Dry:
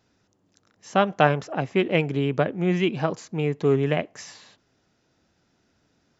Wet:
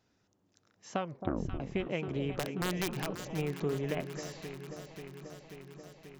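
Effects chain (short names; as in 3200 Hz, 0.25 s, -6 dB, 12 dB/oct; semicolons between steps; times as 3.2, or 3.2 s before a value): 0.97 tape stop 0.63 s; compressor 10:1, threshold -23 dBFS, peak gain reduction 13.5 dB; 2.39–3.25 wrapped overs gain 19 dB; echo with dull and thin repeats by turns 0.268 s, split 940 Hz, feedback 85%, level -9 dB; gain -6.5 dB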